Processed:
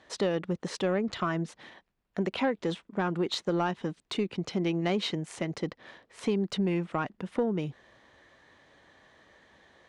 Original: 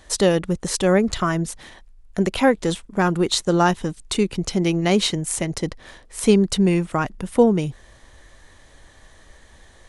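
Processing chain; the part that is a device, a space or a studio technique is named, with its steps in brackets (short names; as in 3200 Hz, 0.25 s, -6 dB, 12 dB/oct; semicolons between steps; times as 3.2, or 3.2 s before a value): AM radio (BPF 160–3600 Hz; compressor 4:1, threshold -18 dBFS, peak gain reduction 8 dB; soft clip -11.5 dBFS, distortion -23 dB); gain -5.5 dB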